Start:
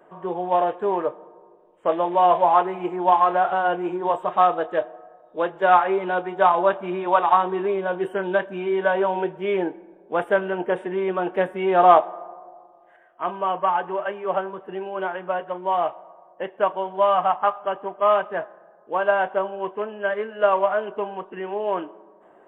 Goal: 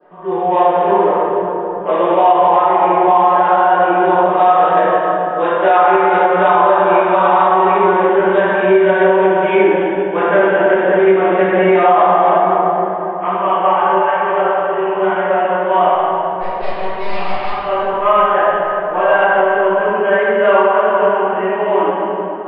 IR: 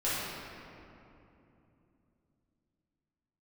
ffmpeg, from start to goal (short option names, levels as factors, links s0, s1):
-filter_complex "[0:a]asettb=1/sr,asplit=3[s0][s1][s2];[s0]atrim=end=15.914[s3];[s1]atrim=start=15.91:end=17.5,asetpts=PTS-STARTPTS,afade=t=in:d=0.004:c=qsin,afade=t=out:st=1.586:d=0.004:c=qsin,aeval=exprs='(tanh(35.5*val(0)+0.75)-tanh(0.75))/35.5':c=same[s4];[s2]atrim=start=17.496[s5];[s3][s4]acrossfade=d=0.004:c1=hsin:c2=qsin[s6];[s6][s5]acrossfade=d=0.004:c1=qsin:c2=hsin[s7];[1:a]atrim=start_sample=2205,asetrate=30870,aresample=44100[s8];[s7][s8]afir=irnorm=-1:irlink=0,alimiter=limit=0.891:level=0:latency=1:release=168,asettb=1/sr,asplit=3[s9][s10][s11];[s9]atrim=end=14.024[s12];[s10]atrim=start=14.02:end=14.93,asetpts=PTS-STARTPTS,afade=t=in:d=0.004:c=qsin,afade=t=out:st=0.906:d=0.004:c=qsin,equalizer=f=210:t=o:w=0.83:g=-7[s13];[s11]atrim=start=14.926[s14];[s12][s13]acrossfade=d=0.004:c1=hsin:c2=qsin[s15];[s15][s14]acrossfade=d=0.004:c1=qsin:c2=hsin,aresample=11025,aresample=44100,adynamicequalizer=threshold=0.0178:dfrequency=2200:dqfactor=1.7:tfrequency=2200:tqfactor=1.7:attack=5:release=100:ratio=0.375:range=3:mode=boostabove:tftype=bell,volume=0.841"